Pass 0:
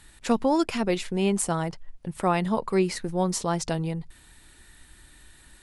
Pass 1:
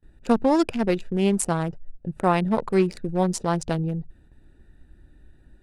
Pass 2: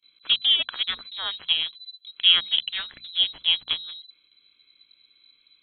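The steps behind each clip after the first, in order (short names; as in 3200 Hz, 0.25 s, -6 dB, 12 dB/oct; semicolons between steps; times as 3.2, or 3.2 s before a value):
Wiener smoothing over 41 samples; gate with hold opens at -48 dBFS; gain +3.5 dB
resonant low shelf 520 Hz -12 dB, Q 3; inverted band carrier 4000 Hz; notches 60/120/180/240 Hz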